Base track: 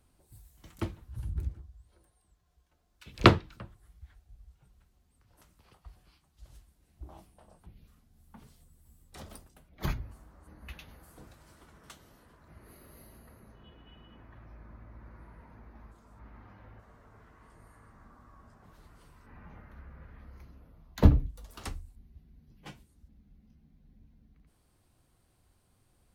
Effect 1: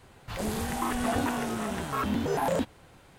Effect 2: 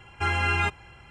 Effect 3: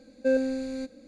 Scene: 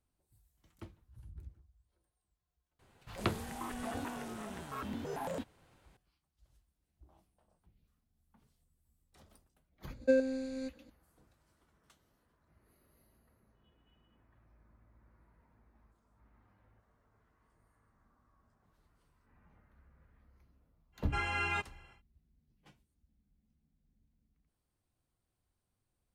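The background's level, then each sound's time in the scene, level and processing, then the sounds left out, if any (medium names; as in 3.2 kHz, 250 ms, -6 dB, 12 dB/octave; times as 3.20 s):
base track -15.5 dB
2.79 s: add 1 -12 dB
9.83 s: add 3 -6 dB + transient shaper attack +5 dB, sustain -4 dB
20.92 s: add 2 -9 dB, fades 0.10 s + high-pass 150 Hz 6 dB/octave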